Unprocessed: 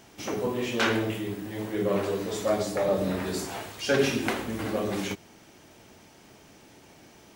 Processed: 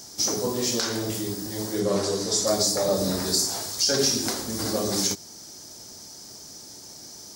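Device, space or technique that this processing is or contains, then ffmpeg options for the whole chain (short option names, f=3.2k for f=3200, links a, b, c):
over-bright horn tweeter: -filter_complex "[0:a]highshelf=f=3.7k:t=q:w=3:g=11.5,alimiter=limit=-13.5dB:level=0:latency=1:release=385,asettb=1/sr,asplit=3[a][b][c];[a]atrim=end=1.804[d];[b]atrim=start=1.8:end=2.47,asetpts=PTS-STARTPTS,afade=t=in:d=0.004:c=qsin,afade=t=out:st=0.666:d=0.004:c=qsin,lowpass=9.3k[e];[c]atrim=start=2.466[f];[d][e]acrossfade=d=0.004:c1=hsin:c2=qsin[g];[g][f]acrossfade=d=0.004:c1=qsin:c2=hsin,volume=2dB"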